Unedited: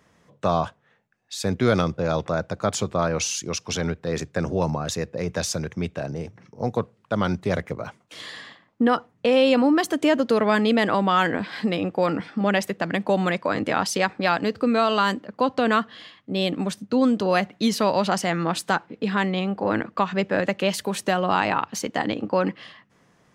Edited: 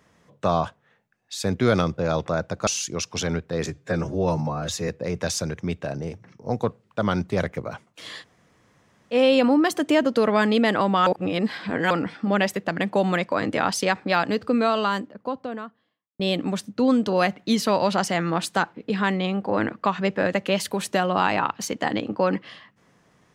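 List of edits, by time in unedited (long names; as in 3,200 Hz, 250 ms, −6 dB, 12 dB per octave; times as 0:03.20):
0:02.67–0:03.21: remove
0:04.21–0:05.02: time-stretch 1.5×
0:08.35–0:09.27: fill with room tone, crossfade 0.06 s
0:11.20–0:12.04: reverse
0:14.49–0:16.33: fade out and dull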